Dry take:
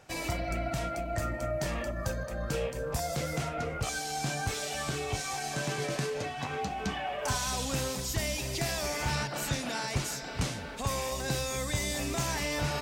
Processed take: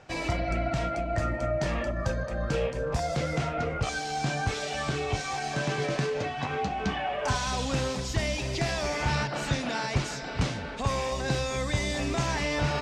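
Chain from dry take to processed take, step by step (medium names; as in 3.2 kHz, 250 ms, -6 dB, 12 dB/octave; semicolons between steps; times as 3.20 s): distance through air 100 m; trim +4.5 dB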